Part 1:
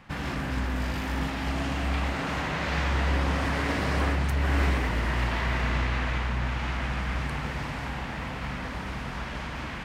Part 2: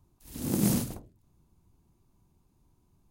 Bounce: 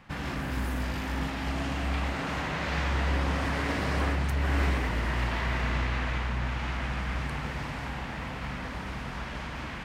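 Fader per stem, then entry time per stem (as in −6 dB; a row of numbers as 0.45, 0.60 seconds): −2.0, −19.0 decibels; 0.00, 0.00 seconds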